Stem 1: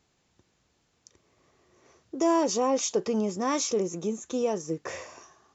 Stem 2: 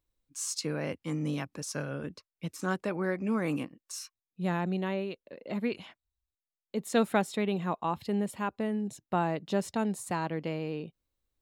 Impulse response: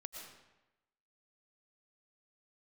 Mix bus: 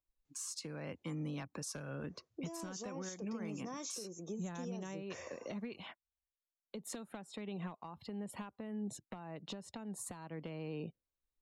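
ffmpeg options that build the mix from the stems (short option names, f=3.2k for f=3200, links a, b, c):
-filter_complex "[0:a]alimiter=limit=-22.5dB:level=0:latency=1:release=499,adelay=250,volume=-6dB,asplit=3[a][b][c];[a]atrim=end=1.14,asetpts=PTS-STARTPTS,afade=t=out:st=1.136:d=0.004:c=hsin[d];[b]atrim=start=1.14:end=1.85,asetpts=PTS-STARTPTS,volume=0[e];[c]atrim=start=1.85,asetpts=PTS-STARTPTS,afade=t=in:d=0.004:c=hsin[f];[d][e][f]concat=n=3:v=0:a=1[g];[1:a]equalizer=f=980:t=o:w=1.9:g=4.5,acompressor=threshold=-33dB:ratio=16,volume=28dB,asoftclip=hard,volume=-28dB,volume=1.5dB[h];[g][h]amix=inputs=2:normalize=0,afftdn=nr=15:nf=-58,acrossover=split=230|3000[i][j][k];[j]acompressor=threshold=-40dB:ratio=8[l];[i][l][k]amix=inputs=3:normalize=0,alimiter=level_in=9.5dB:limit=-24dB:level=0:latency=1:release=453,volume=-9.5dB"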